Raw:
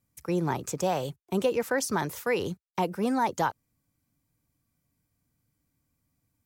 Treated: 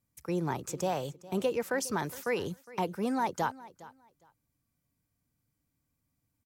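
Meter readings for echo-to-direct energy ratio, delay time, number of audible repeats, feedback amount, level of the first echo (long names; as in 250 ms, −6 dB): −19.0 dB, 410 ms, 2, 19%, −19.0 dB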